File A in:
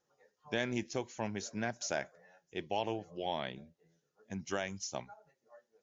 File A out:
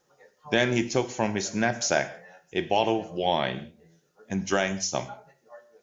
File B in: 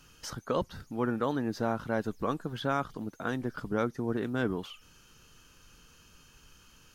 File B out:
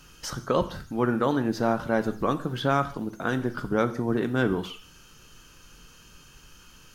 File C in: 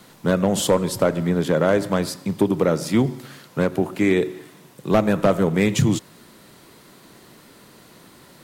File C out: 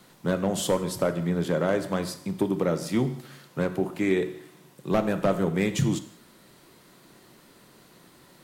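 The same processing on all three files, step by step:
non-linear reverb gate 0.21 s falling, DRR 9.5 dB; match loudness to -27 LUFS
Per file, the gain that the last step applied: +11.5, +5.5, -6.5 dB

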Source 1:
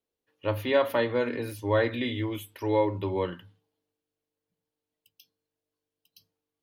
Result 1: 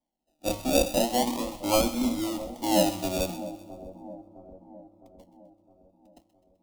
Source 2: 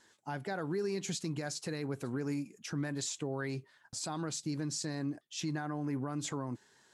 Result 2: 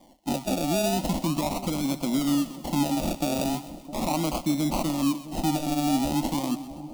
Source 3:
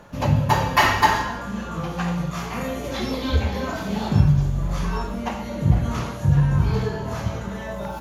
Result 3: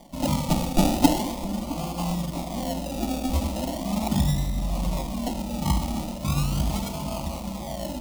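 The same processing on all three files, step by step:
decimation with a swept rate 33×, swing 60% 0.39 Hz; fixed phaser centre 430 Hz, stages 6; split-band echo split 850 Hz, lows 0.661 s, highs 0.128 s, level -14 dB; match loudness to -27 LUFS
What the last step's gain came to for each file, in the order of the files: +4.5, +14.0, +0.5 dB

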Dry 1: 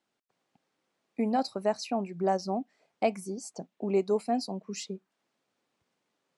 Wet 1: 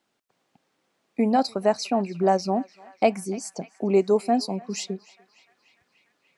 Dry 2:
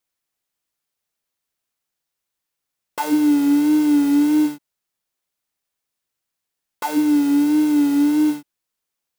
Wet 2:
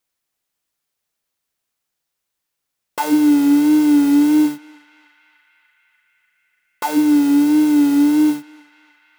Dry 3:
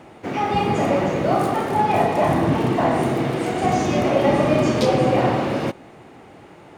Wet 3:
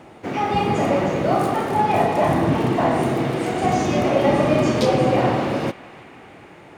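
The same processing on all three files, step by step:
narrowing echo 0.295 s, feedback 80%, band-pass 2000 Hz, level -17.5 dB; normalise peaks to -6 dBFS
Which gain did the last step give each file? +7.0, +3.0, 0.0 dB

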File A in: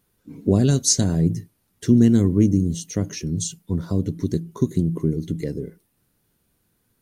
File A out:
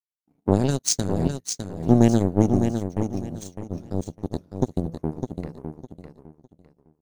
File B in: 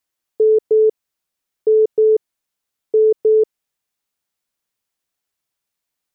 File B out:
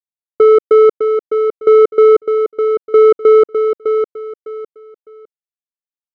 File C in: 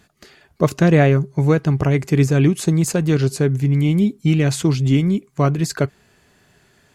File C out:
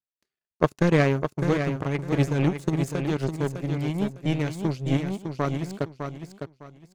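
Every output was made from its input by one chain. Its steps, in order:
power-law curve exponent 2; feedback echo 0.606 s, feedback 25%, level -7 dB; normalise peaks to -2 dBFS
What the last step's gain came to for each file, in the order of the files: +2.5, +6.5, -0.5 dB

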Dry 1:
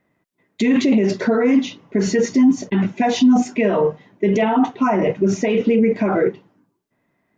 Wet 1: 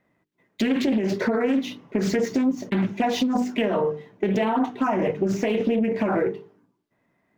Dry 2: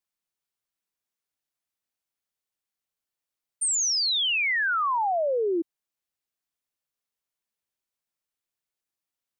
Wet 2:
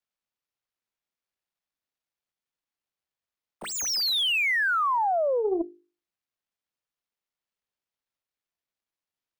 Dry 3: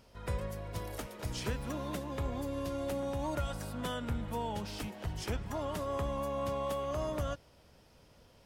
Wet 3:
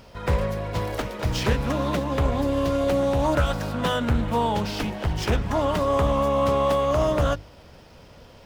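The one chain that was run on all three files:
median filter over 5 samples; notches 50/100/150/200/250/300/350/400/450 Hz; compressor 6:1, threshold -18 dBFS; Doppler distortion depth 0.27 ms; match loudness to -24 LUFS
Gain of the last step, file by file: -0.5, +0.5, +14.0 dB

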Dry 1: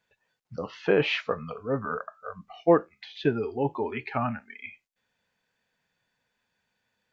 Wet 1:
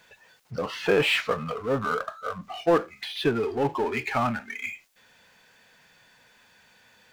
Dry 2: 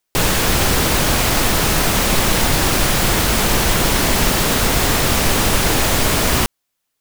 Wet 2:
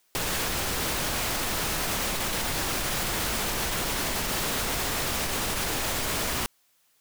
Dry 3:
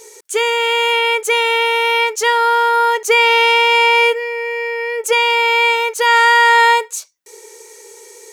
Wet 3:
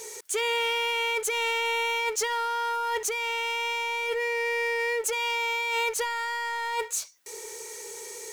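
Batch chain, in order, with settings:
low shelf 430 Hz -5.5 dB; negative-ratio compressor -19 dBFS, ratio -1; power-law curve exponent 0.7; match loudness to -27 LUFS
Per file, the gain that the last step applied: +0.5, -13.0, -12.5 dB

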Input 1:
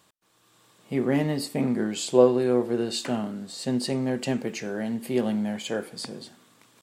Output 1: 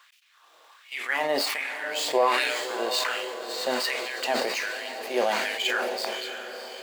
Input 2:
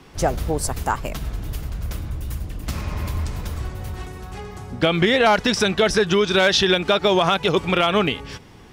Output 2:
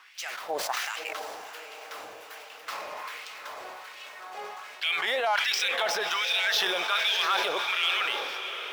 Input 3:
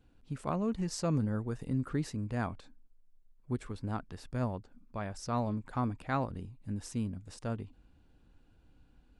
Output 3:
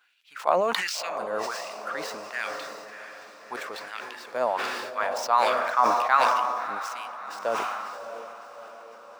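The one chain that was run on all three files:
median filter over 5 samples; LFO high-pass sine 1.3 Hz 540–2700 Hz; limiter -13 dBFS; low shelf 300 Hz -11 dB; on a send: diffused feedback echo 0.649 s, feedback 57%, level -9 dB; on the sum: dynamic EQ 460 Hz, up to -5 dB, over -41 dBFS, Q 2.7; sustainer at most 29 dB/s; match loudness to -27 LUFS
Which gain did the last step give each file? +5.0, -4.0, +10.0 dB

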